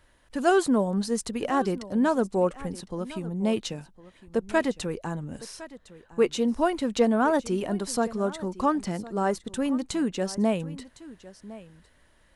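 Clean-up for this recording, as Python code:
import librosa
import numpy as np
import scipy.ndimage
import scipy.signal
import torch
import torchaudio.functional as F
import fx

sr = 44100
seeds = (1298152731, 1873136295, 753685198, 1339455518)

y = fx.fix_echo_inverse(x, sr, delay_ms=1058, level_db=-18.0)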